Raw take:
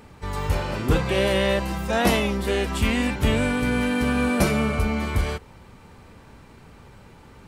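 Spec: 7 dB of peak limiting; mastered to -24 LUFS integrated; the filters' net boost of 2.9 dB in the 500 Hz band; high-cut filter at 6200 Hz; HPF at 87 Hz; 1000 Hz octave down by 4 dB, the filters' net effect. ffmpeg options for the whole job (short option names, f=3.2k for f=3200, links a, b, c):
-af "highpass=87,lowpass=6.2k,equalizer=f=500:t=o:g=5.5,equalizer=f=1k:t=o:g=-8,volume=0.5dB,alimiter=limit=-14dB:level=0:latency=1"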